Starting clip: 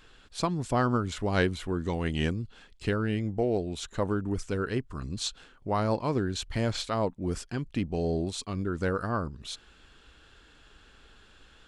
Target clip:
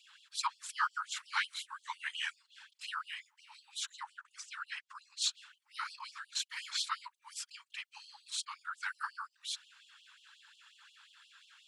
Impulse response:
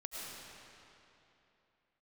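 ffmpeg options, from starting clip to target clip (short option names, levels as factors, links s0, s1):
-filter_complex "[0:a]asettb=1/sr,asplit=3[s0][s1][s2];[s0]atrim=end=3.914[s3];[s1]atrim=start=3.91:end=5.22,asetpts=PTS-STARTPTS,afade=t=in:d=0.004:c=qsin,afade=t=out:st=1.306:d=0.004:c=qsin,highpass=310,lowpass=7700[s4];[s2]atrim=start=5.216[s5];[s3][s4]acrossfade=d=0.004:c1=hsin:c2=qsin[s6];[s6][s5]acrossfade=d=0.004:c1=qsin:c2=hsin,afftfilt=real='hypot(re,im)*cos(2*PI*random(0))':imag='hypot(re,im)*sin(2*PI*random(1))':win_size=512:overlap=0.75,afftfilt=real='re*gte(b*sr/1024,810*pow(2800/810,0.5+0.5*sin(2*PI*5.6*pts/sr)))':imag='im*gte(b*sr/1024,810*pow(2800/810,0.5+0.5*sin(2*PI*5.6*pts/sr)))':win_size=1024:overlap=0.75,volume=2"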